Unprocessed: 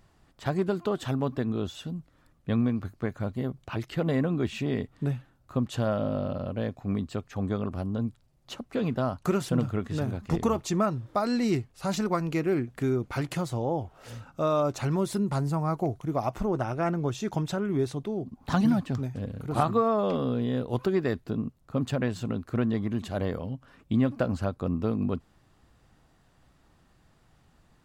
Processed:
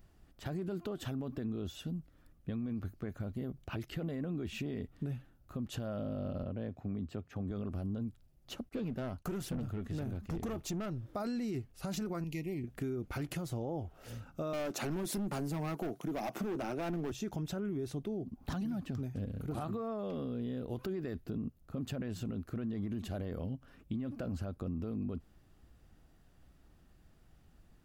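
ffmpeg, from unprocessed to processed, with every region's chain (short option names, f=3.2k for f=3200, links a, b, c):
-filter_complex "[0:a]asettb=1/sr,asplit=3[a][b][c];[a]atrim=end=6.434[d];[b]atrim=start=6.43:end=7.51,asetpts=PTS-STARTPTS,afade=t=in:d=0.004:c=qsin,afade=t=out:st=1.076:d=0.004:c=qsin,highpass=f=68:w=0.5412,highpass=f=68:w=1.3066,highshelf=f=4k:g=-10[e];[c]atrim=start=7.506[f];[d][e]acrossfade=d=0.004:c1=hsin:c2=qsin[g];[g][f]acrossfade=d=0.004:c1=qsin:c2=hsin,asettb=1/sr,asplit=3[h][i][j];[h]atrim=end=8.694[k];[i]atrim=start=8.69:end=11.04,asetpts=PTS-STARTPTS,afade=t=in:d=0.004:c=qsin,afade=t=out:st=2.346:d=0.004:c=qsin,agate=range=-33dB:threshold=-48dB:ratio=3:release=100:detection=peak,aeval=exprs='(tanh(20*val(0)+0.2)-tanh(0.2))/20':c=same[l];[j]atrim=start=11.036[m];[k][l]acrossfade=d=0.004:c1=hsin:c2=qsin[n];[n][m]acrossfade=d=0.004:c1=qsin:c2=hsin,asettb=1/sr,asplit=3[o][p][q];[o]atrim=end=12.244[r];[p]atrim=start=12.24:end=12.64,asetpts=PTS-STARTPTS,afade=t=in:d=0.004:c=qsin,afade=t=out:st=0.396:d=0.004:c=qsin,asuperstop=centerf=1400:order=20:qfactor=1.8,equalizer=f=500:w=0.55:g=-11.5[s];[q]atrim=start=12.636[t];[r][s]acrossfade=d=0.004:c1=hsin:c2=qsin[u];[u][t]acrossfade=d=0.004:c1=qsin:c2=hsin,asettb=1/sr,asplit=3[v][w][x];[v]atrim=end=14.534[y];[w]atrim=start=14.53:end=17.12,asetpts=PTS-STARTPTS,afade=t=in:d=0.004:c=qsin,afade=t=out:st=2.586:d=0.004:c=qsin,highpass=f=180:w=0.5412,highpass=f=180:w=1.3066,acontrast=73,asoftclip=type=hard:threshold=-23dB[z];[x]atrim=start=17.116[aa];[y][z]acrossfade=d=0.004:c1=hsin:c2=qsin[ab];[ab][aa]acrossfade=d=0.004:c1=qsin:c2=hsin,equalizer=f=125:t=o:w=1:g=-7,equalizer=f=250:t=o:w=1:g=-3,equalizer=f=500:t=o:w=1:g=-5,equalizer=f=1k:t=o:w=1:g=-11,equalizer=f=2k:t=o:w=1:g=-6,equalizer=f=4k:t=o:w=1:g=-7,equalizer=f=8k:t=o:w=1:g=-8,alimiter=level_in=6.5dB:limit=-24dB:level=0:latency=1:release=29,volume=-6.5dB,acompressor=threshold=-37dB:ratio=6,volume=3.5dB"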